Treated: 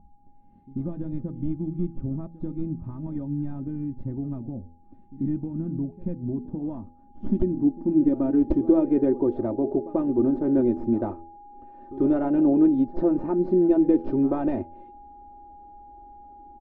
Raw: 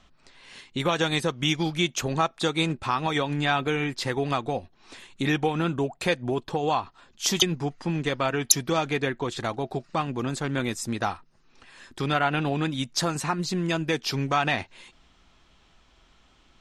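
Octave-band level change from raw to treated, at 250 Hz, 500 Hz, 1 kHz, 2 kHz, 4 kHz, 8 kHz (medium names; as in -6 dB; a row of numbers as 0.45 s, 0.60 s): +7.5 dB, +1.5 dB, -10.5 dB, under -20 dB, under -40 dB, under -40 dB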